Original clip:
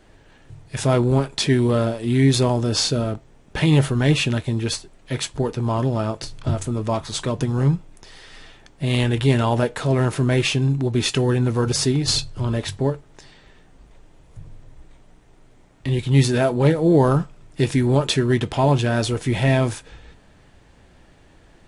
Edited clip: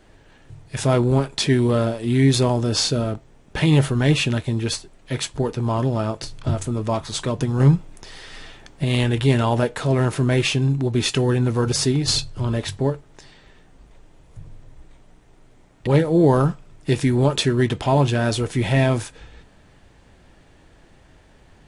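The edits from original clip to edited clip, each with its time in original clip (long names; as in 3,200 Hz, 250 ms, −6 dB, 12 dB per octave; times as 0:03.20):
0:07.60–0:08.84: clip gain +4 dB
0:15.87–0:16.58: remove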